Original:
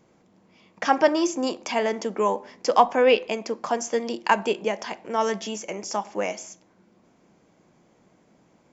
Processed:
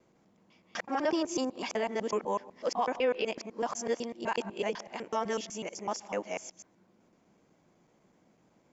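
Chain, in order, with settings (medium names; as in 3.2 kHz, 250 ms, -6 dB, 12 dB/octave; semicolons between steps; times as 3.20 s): time reversed locally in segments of 125 ms; peak limiter -13.5 dBFS, peak gain reduction 9.5 dB; trim -6.5 dB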